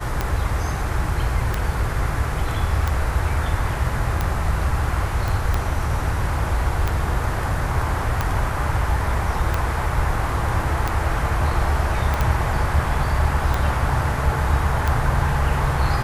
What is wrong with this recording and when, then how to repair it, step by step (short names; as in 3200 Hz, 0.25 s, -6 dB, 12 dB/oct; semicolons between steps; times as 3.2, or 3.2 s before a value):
tick 45 rpm -8 dBFS
5.28 pop
12.14 pop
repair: de-click